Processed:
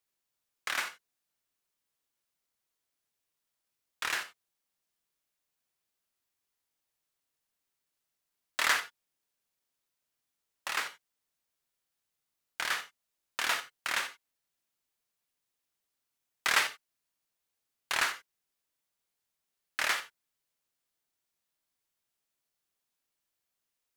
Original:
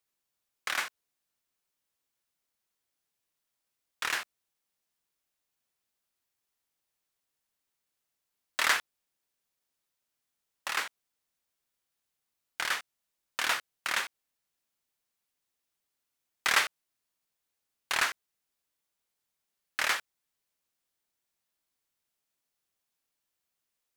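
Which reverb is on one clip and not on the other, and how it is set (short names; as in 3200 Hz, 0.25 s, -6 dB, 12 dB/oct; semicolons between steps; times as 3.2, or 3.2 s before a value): non-linear reverb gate 0.11 s flat, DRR 10 dB; gain -1.5 dB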